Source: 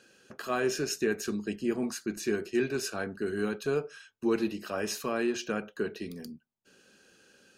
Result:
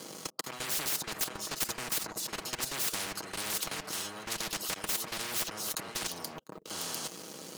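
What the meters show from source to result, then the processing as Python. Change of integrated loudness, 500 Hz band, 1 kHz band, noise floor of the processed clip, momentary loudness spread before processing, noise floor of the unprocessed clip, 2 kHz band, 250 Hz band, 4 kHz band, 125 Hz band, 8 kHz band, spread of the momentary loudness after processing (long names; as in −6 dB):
−2.0 dB, −13.5 dB, −0.5 dB, −48 dBFS, 11 LU, −71 dBFS, −2.0 dB, −14.0 dB, +6.5 dB, −6.5 dB, +7.0 dB, 8 LU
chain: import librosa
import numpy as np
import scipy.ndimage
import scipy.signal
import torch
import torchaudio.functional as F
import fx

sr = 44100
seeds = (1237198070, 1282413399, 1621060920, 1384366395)

p1 = fx.auto_swell(x, sr, attack_ms=565.0)
p2 = scipy.signal.sosfilt(scipy.signal.cheby1(3, 1.0, [1200.0, 3100.0], 'bandstop', fs=sr, output='sos'), p1)
p3 = p2 + fx.echo_single(p2, sr, ms=699, db=-11.5, dry=0)
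p4 = fx.leveller(p3, sr, passes=5)
p5 = scipy.signal.sosfilt(scipy.signal.butter(2, 270.0, 'highpass', fs=sr, output='sos'), p4)
p6 = fx.peak_eq(p5, sr, hz=3500.0, db=-4.0, octaves=0.48)
p7 = fx.level_steps(p6, sr, step_db=16)
p8 = fx.low_shelf(p7, sr, hz=360.0, db=12.0)
p9 = p8 + 0.5 * np.pad(p8, (int(6.3 * sr / 1000.0), 0))[:len(p8)]
y = fx.spectral_comp(p9, sr, ratio=10.0)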